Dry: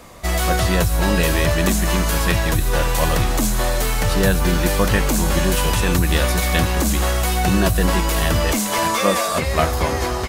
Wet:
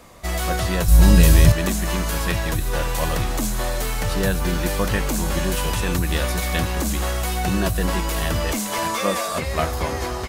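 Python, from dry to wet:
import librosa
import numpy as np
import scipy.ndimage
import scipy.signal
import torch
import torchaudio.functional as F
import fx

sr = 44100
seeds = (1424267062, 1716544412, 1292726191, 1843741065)

y = fx.bass_treble(x, sr, bass_db=13, treble_db=8, at=(0.88, 1.52))
y = F.gain(torch.from_numpy(y), -4.5).numpy()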